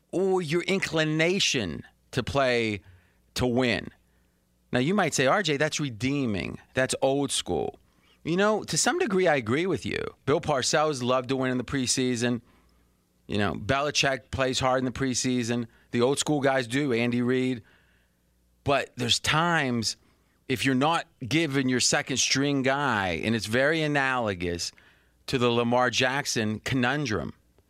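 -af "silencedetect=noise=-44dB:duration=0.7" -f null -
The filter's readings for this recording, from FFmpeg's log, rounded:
silence_start: 3.89
silence_end: 4.73 | silence_duration: 0.84
silence_start: 12.40
silence_end: 13.29 | silence_duration: 0.89
silence_start: 17.60
silence_end: 18.66 | silence_duration: 1.06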